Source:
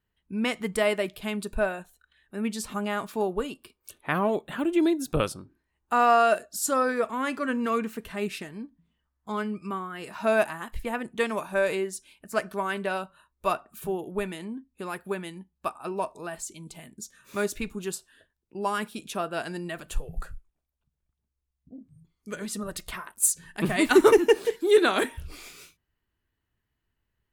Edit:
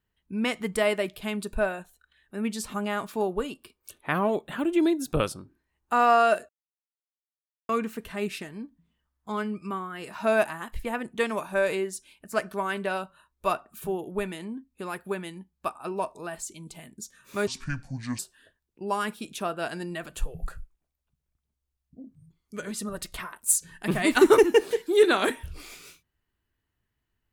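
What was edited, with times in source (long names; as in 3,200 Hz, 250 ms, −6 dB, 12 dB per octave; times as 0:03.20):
0:06.49–0:07.69: silence
0:17.47–0:17.93: play speed 64%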